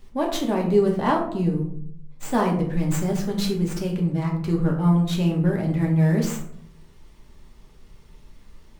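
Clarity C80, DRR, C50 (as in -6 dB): 10.0 dB, -1.0 dB, 7.0 dB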